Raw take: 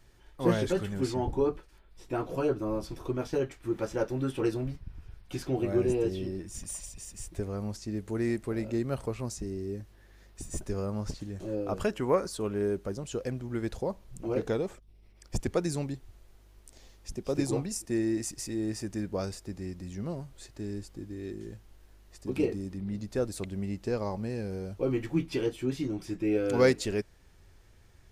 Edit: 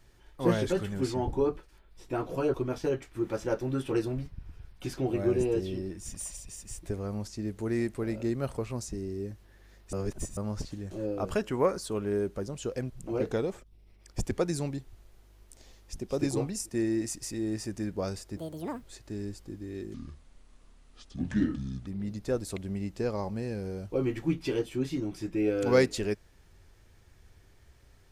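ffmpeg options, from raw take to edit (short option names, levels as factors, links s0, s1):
-filter_complex "[0:a]asplit=9[s0][s1][s2][s3][s4][s5][s6][s7][s8];[s0]atrim=end=2.542[s9];[s1]atrim=start=3.028:end=10.422[s10];[s2]atrim=start=10.418:end=10.862,asetpts=PTS-STARTPTS,areverse[s11];[s3]atrim=start=10.858:end=13.392[s12];[s4]atrim=start=14.058:end=19.534[s13];[s5]atrim=start=19.53:end=20.31,asetpts=PTS-STARTPTS,asetrate=76293,aresample=44100,atrim=end_sample=19883,asetpts=PTS-STARTPTS[s14];[s6]atrim=start=20.306:end=21.434[s15];[s7]atrim=start=21.43:end=22.74,asetpts=PTS-STARTPTS,asetrate=29988,aresample=44100,atrim=end_sample=84957,asetpts=PTS-STARTPTS[s16];[s8]atrim=start=22.736[s17];[s9][s10]acrossfade=d=0.004:c1=hsin:c2=hsin[s18];[s18][s11]acrossfade=d=0.004:c1=hsin:c2=hsin[s19];[s19][s12]acrossfade=d=0.004:c1=hsin:c2=hsin[s20];[s20][s13]acrossfade=d=0.004:c1=hsin:c2=hsin[s21];[s21][s14]acrossfade=d=0.004:c1=hsin:c2=hsin[s22];[s22][s15]acrossfade=d=0.004:c1=hsin:c2=hsin[s23];[s23][s16]acrossfade=d=0.004:c1=hsin:c2=hsin[s24];[s24][s17]acrossfade=d=0.004:c1=hsin:c2=hsin"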